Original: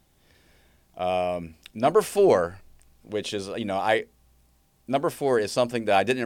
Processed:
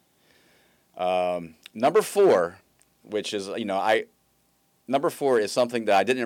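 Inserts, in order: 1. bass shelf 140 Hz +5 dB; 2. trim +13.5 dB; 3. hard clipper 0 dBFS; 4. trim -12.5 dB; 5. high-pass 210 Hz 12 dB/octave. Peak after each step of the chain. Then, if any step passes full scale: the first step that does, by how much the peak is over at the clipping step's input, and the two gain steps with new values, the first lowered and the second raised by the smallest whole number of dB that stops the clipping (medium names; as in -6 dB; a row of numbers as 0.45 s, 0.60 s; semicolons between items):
-6.5 dBFS, +7.0 dBFS, 0.0 dBFS, -12.5 dBFS, -8.0 dBFS; step 2, 7.0 dB; step 2 +6.5 dB, step 4 -5.5 dB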